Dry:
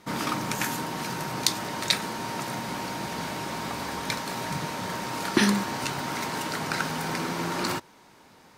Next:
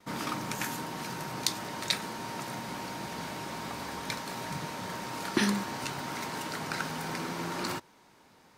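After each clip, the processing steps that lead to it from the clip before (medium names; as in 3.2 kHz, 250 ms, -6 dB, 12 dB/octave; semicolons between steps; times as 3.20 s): gate with hold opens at -47 dBFS; trim -5.5 dB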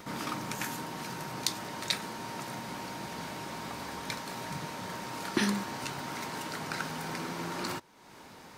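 upward compressor, threshold -38 dBFS; trim -1.5 dB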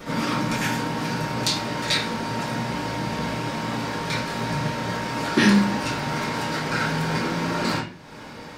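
reverberation RT60 0.40 s, pre-delay 3 ms, DRR -11 dB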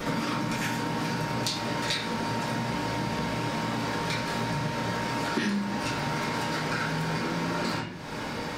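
compression 6:1, threshold -33 dBFS, peak gain reduction 18.5 dB; trim +6 dB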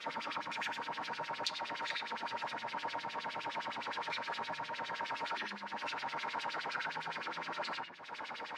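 LFO band-pass sine 9.7 Hz 760–3800 Hz; trim -1.5 dB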